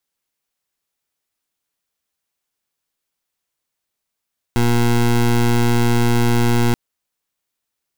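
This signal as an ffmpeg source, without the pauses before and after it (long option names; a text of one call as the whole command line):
ffmpeg -f lavfi -i "aevalsrc='0.188*(2*lt(mod(119*t,1),0.2)-1)':duration=2.18:sample_rate=44100" out.wav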